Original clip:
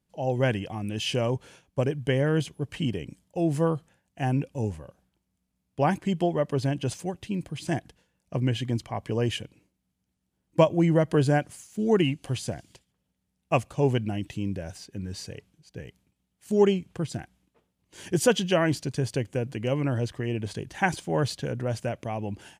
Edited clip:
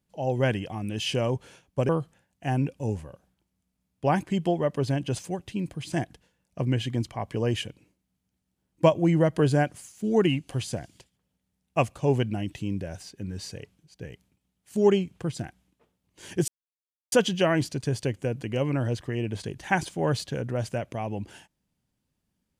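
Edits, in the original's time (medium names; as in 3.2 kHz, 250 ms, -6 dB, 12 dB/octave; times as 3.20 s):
1.89–3.64 s: delete
18.23 s: insert silence 0.64 s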